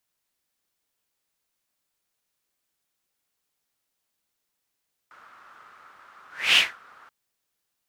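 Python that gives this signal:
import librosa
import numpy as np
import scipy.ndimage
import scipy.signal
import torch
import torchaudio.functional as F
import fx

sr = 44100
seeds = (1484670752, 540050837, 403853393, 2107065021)

y = fx.whoosh(sr, seeds[0], length_s=1.98, peak_s=1.45, rise_s=0.29, fall_s=0.23, ends_hz=1300.0, peak_hz=2900.0, q=4.9, swell_db=34.5)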